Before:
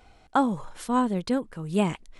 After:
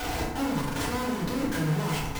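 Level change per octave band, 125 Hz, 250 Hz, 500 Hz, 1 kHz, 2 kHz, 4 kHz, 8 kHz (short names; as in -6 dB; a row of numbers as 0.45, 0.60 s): +4.5, -3.0, -2.5, -4.5, +5.0, +5.5, +7.0 dB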